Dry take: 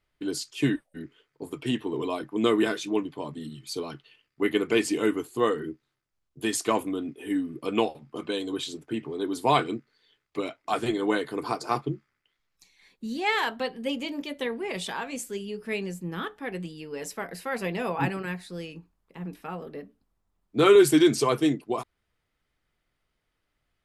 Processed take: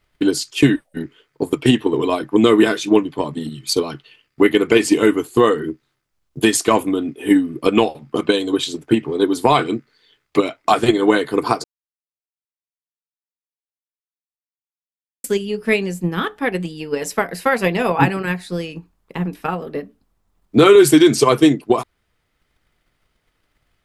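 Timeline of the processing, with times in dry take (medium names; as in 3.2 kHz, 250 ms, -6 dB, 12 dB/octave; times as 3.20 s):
11.64–15.24 s: mute
whole clip: transient shaper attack +8 dB, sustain -1 dB; loudness maximiser +11 dB; trim -1 dB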